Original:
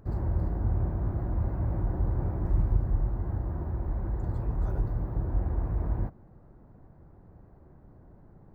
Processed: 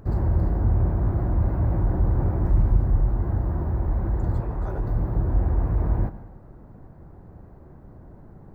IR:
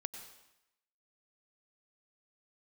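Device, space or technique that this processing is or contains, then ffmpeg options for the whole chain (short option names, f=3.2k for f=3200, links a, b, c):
saturated reverb return: -filter_complex "[0:a]asplit=2[a][b];[1:a]atrim=start_sample=2205[c];[b][c]afir=irnorm=-1:irlink=0,asoftclip=type=tanh:threshold=-24.5dB,volume=1.5dB[d];[a][d]amix=inputs=2:normalize=0,asettb=1/sr,asplit=3[e][f][g];[e]atrim=end=4.404[h];[f]atrim=start=4.4:end=4.87,asetpts=PTS-STARTPTS,afade=t=in:d=0.004:c=qsin,afade=t=out:st=0.466:d=0.004:c=qsin,bass=f=250:g=-6,treble=f=4k:g=-5[i];[g]atrim=start=4.866[j];[h][i]acrossfade=d=0.004:c1=hsin:c2=qsin[k];[k][j]acrossfade=d=0.004:c1=qsin:c2=hsin,volume=2dB"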